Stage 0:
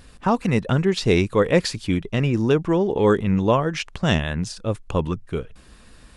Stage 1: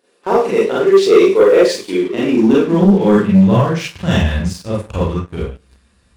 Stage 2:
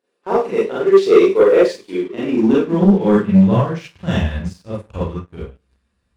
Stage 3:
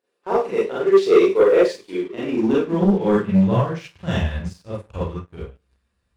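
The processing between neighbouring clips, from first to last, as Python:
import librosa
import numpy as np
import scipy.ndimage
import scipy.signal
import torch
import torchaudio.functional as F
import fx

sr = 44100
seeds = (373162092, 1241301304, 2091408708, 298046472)

y1 = fx.filter_sweep_highpass(x, sr, from_hz=400.0, to_hz=64.0, start_s=1.87, end_s=4.37, q=4.3)
y1 = fx.rev_schroeder(y1, sr, rt60_s=0.39, comb_ms=32, drr_db=-7.5)
y1 = fx.leveller(y1, sr, passes=2)
y1 = y1 * librosa.db_to_amplitude(-11.5)
y2 = fx.high_shelf(y1, sr, hz=4200.0, db=-6.5)
y2 = fx.upward_expand(y2, sr, threshold_db=-30.0, expansion=1.5)
y3 = fx.peak_eq(y2, sr, hz=230.0, db=-4.0, octaves=0.8)
y3 = y3 * librosa.db_to_amplitude(-2.5)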